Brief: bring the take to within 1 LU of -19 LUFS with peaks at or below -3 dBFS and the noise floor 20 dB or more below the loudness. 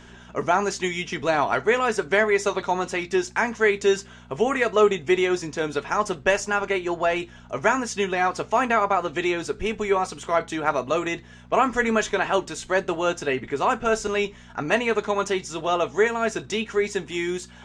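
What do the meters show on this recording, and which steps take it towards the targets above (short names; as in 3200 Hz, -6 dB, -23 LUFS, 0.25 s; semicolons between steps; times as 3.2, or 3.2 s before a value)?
hum 60 Hz; harmonics up to 240 Hz; hum level -47 dBFS; loudness -23.5 LUFS; peak -5.0 dBFS; loudness target -19.0 LUFS
-> de-hum 60 Hz, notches 4; gain +4.5 dB; limiter -3 dBFS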